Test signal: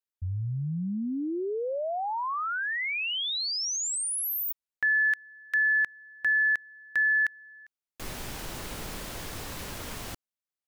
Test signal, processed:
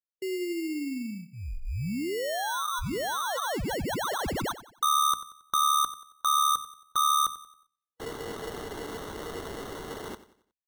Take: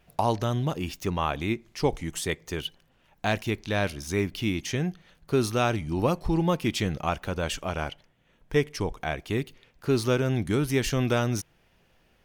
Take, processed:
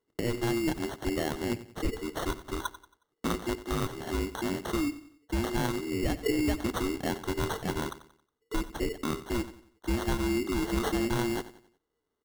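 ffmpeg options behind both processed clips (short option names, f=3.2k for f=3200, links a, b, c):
-filter_complex "[0:a]afftfilt=real='real(if(lt(b,920),b+92*(1-2*mod(floor(b/92),2)),b),0)':imag='imag(if(lt(b,920),b+92*(1-2*mod(floor(b/92),2)),b),0)':win_size=2048:overlap=0.75,bandreject=f=2.3k:w=12,agate=range=-19dB:threshold=-50dB:ratio=16:release=31:detection=peak,bandreject=f=60:t=h:w=6,bandreject=f=120:t=h:w=6,bandreject=f=180:t=h:w=6,bandreject=f=240:t=h:w=6,bandreject=f=300:t=h:w=6,alimiter=limit=-17.5dB:level=0:latency=1:release=167,acrusher=samples=18:mix=1:aa=0.000001,asplit=2[a][b];[b]aecho=0:1:91|182|273|364:0.178|0.0694|0.027|0.0105[c];[a][c]amix=inputs=2:normalize=0"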